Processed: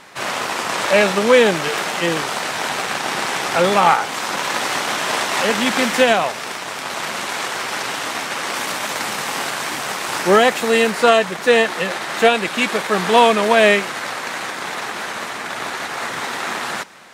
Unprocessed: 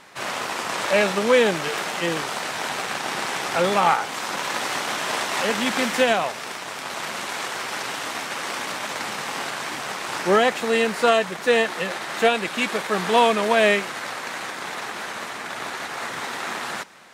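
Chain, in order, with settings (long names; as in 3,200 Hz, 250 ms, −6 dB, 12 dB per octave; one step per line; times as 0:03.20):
0:08.55–0:10.91: high-shelf EQ 9,600 Hz +7.5 dB
level +5 dB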